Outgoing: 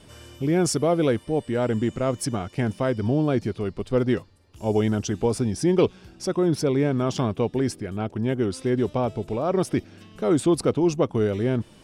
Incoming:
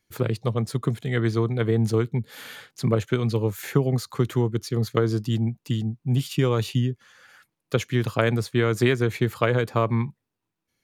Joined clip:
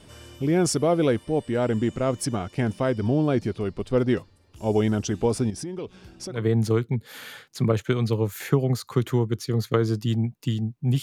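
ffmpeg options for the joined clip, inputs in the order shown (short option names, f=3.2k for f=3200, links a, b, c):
-filter_complex "[0:a]asettb=1/sr,asplit=3[a][b][c];[a]atrim=end=5.504[d];[b]atrim=start=5.5:end=6.46,asetpts=PTS-STARTPTS,afade=t=in:d=0.004:c=qsin,afade=t=out:st=0.956:d=0.004:c=qsin,acompressor=threshold=-32dB:ratio=4:attack=3.2:release=140:knee=1:detection=peak[e];[c]atrim=start=6.456[f];[d][e]acrossfade=d=0.004:c1=hsin:c2=qsin[g];[g][f]acrossfade=d=0.004:c1=qsin:c2=hsin,apad=whole_dur=11.02,atrim=end=11.02,atrim=end=6.46,asetpts=PTS-STARTPTS[h];[1:a]atrim=start=1.51:end=6.25,asetpts=PTS-STARTPTS[i];[h][i]acrossfade=d=0.18:c1=tri:c2=tri"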